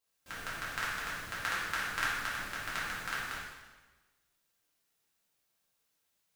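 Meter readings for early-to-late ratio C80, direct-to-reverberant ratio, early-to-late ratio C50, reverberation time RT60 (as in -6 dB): 2.0 dB, -9.0 dB, -1.0 dB, 1.2 s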